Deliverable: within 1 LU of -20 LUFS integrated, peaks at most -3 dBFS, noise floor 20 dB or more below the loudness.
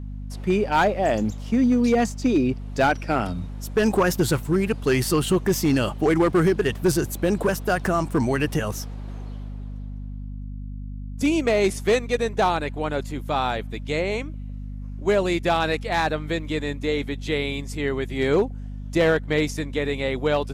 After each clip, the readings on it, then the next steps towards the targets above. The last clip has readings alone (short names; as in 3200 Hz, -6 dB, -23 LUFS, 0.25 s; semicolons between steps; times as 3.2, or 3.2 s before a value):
clipped 0.9%; flat tops at -13.0 dBFS; hum 50 Hz; harmonics up to 250 Hz; hum level -31 dBFS; loudness -23.0 LUFS; peak -13.0 dBFS; loudness target -20.0 LUFS
-> clip repair -13 dBFS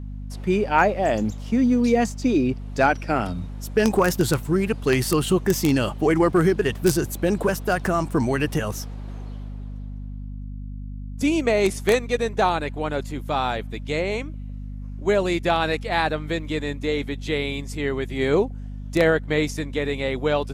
clipped 0.0%; hum 50 Hz; harmonics up to 250 Hz; hum level -31 dBFS
-> de-hum 50 Hz, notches 5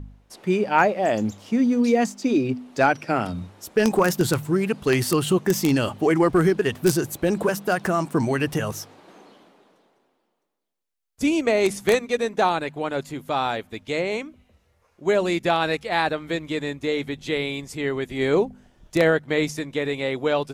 hum none; loudness -23.0 LUFS; peak -3.5 dBFS; loudness target -20.0 LUFS
-> gain +3 dB; limiter -3 dBFS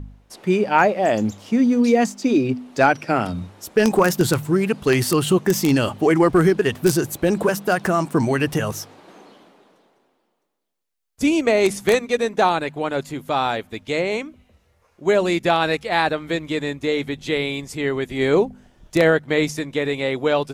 loudness -20.0 LUFS; peak -3.0 dBFS; noise floor -67 dBFS